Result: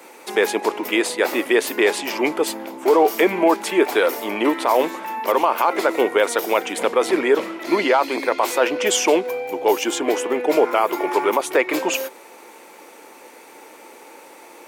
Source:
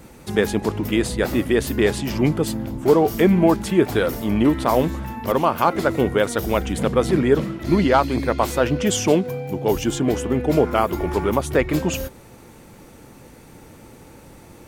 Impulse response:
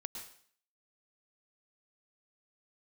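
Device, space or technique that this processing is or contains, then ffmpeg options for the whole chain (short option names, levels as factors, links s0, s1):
laptop speaker: -af "highpass=f=350:w=0.5412,highpass=f=350:w=1.3066,equalizer=f=930:t=o:w=0.47:g=5,equalizer=f=2300:t=o:w=0.47:g=5.5,alimiter=limit=0.316:level=0:latency=1:release=15,volume=1.5"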